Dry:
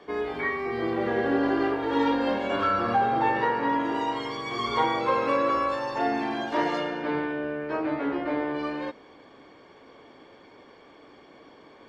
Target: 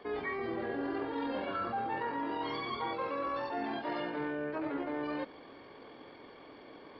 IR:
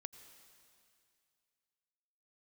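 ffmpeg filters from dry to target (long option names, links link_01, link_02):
-af "areverse,acompressor=threshold=-33dB:ratio=6,areverse,atempo=1.7,aresample=11025,aresample=44100"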